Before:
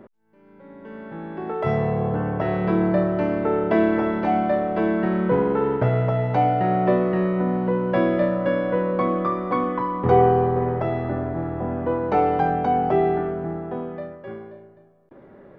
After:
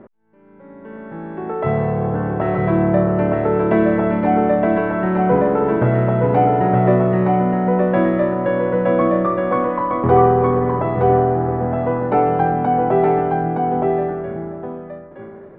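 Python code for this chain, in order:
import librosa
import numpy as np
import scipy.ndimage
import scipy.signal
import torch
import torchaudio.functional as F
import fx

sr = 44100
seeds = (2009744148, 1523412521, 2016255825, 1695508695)

y = scipy.signal.sosfilt(scipy.signal.butter(2, 2300.0, 'lowpass', fs=sr, output='sos'), x)
y = y + 10.0 ** (-3.5 / 20.0) * np.pad(y, (int(918 * sr / 1000.0), 0))[:len(y)]
y = y * librosa.db_to_amplitude(3.5)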